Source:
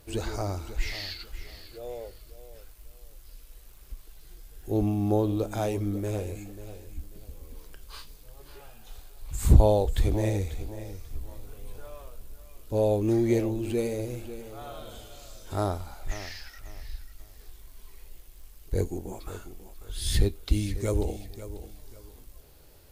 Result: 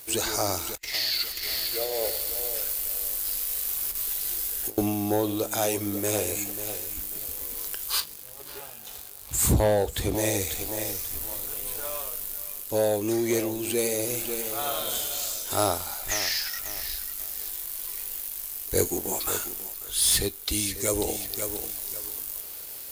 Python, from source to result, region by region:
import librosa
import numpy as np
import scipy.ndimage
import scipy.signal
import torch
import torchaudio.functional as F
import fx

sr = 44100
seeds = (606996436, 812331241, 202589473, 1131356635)

y = fx.chain(x, sr, fx.over_compress(threshold_db=-39.0, ratio=-1.0),
    fx.echo_split(split_hz=1000.0, low_ms=102, high_ms=312, feedback_pct=52, wet_db=-11.0), at=(0.74, 4.78))
y = fx.chain(y, sr, fx.highpass(hz=75.0, slope=12),
    fx.tilt_eq(slope=-2.0), at=(8.0, 10.15))
y = fx.riaa(y, sr, side='recording')
y = fx.leveller(y, sr, passes=2)
y = fx.rider(y, sr, range_db=4, speed_s=0.5)